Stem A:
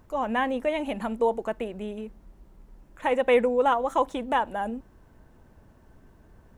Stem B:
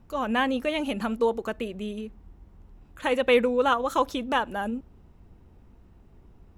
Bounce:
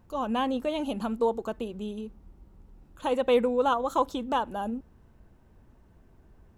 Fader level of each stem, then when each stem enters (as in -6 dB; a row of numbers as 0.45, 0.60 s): -7.5, -5.5 dB; 0.00, 0.00 s